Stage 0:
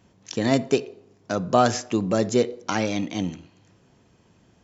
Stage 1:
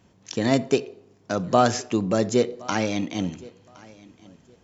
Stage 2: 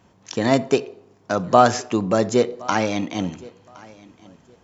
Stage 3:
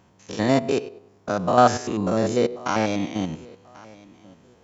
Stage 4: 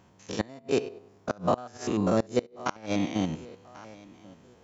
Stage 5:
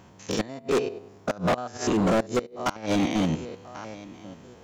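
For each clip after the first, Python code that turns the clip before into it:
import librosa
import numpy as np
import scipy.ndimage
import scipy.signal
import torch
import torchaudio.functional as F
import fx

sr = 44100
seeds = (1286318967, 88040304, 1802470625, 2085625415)

y1 = fx.echo_feedback(x, sr, ms=1066, feedback_pct=22, wet_db=-23.0)
y2 = fx.peak_eq(y1, sr, hz=990.0, db=6.0, octaves=1.6)
y2 = y2 * librosa.db_to_amplitude(1.0)
y3 = fx.spec_steps(y2, sr, hold_ms=100)
y4 = fx.gate_flip(y3, sr, shuts_db=-10.0, range_db=-26)
y4 = y4 * librosa.db_to_amplitude(-1.5)
y5 = np.clip(10.0 ** (26.5 / 20.0) * y4, -1.0, 1.0) / 10.0 ** (26.5 / 20.0)
y5 = y5 * librosa.db_to_amplitude(7.5)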